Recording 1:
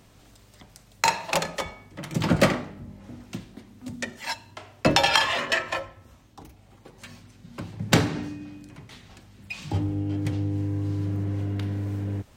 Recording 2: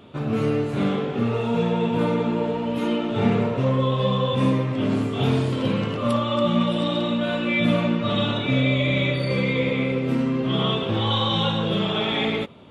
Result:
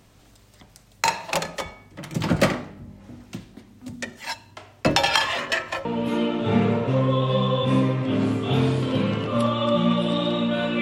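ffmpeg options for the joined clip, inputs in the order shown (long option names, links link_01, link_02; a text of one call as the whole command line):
ffmpeg -i cue0.wav -i cue1.wav -filter_complex "[0:a]apad=whole_dur=10.81,atrim=end=10.81,atrim=end=5.852[link_01];[1:a]atrim=start=2.548:end=7.51[link_02];[link_01][link_02]acrossfade=duration=0.004:curve1=hsin:curve2=hsin" out.wav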